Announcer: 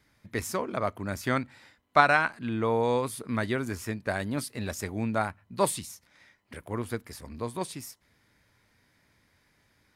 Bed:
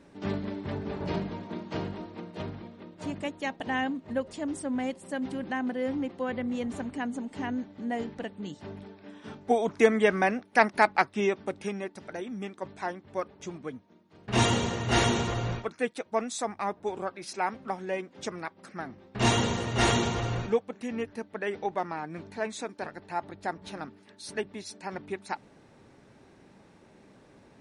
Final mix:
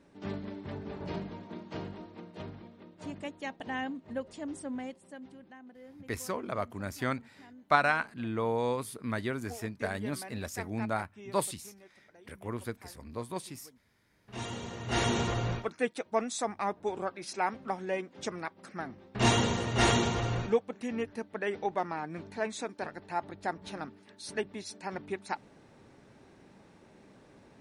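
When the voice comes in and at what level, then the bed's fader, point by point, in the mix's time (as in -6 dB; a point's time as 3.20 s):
5.75 s, -4.5 dB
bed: 4.69 s -6 dB
5.59 s -21 dB
14.12 s -21 dB
15.23 s -1 dB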